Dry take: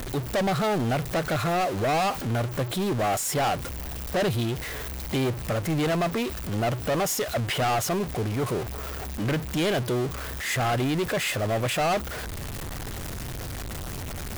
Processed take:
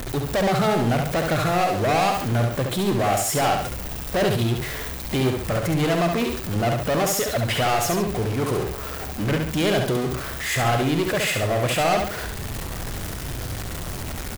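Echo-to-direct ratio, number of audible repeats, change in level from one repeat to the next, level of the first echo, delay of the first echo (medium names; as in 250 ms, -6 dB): -3.5 dB, 2, -7.0 dB, -4.5 dB, 69 ms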